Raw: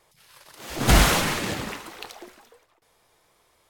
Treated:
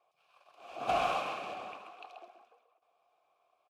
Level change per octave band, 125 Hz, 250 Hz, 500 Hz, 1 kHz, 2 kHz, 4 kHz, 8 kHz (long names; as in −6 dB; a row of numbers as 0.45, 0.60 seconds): −30.0, −22.0, −8.0, −5.5, −15.5, −18.0, −28.5 decibels